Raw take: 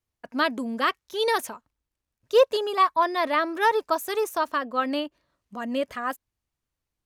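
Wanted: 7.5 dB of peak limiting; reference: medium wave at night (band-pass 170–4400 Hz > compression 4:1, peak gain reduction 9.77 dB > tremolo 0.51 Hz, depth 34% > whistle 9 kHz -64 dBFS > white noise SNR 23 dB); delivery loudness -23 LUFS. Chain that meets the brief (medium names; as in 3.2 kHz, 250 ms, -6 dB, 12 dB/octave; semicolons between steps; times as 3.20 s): peak limiter -16 dBFS; band-pass 170–4400 Hz; compression 4:1, threshold -31 dBFS; tremolo 0.51 Hz, depth 34%; whistle 9 kHz -64 dBFS; white noise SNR 23 dB; trim +13.5 dB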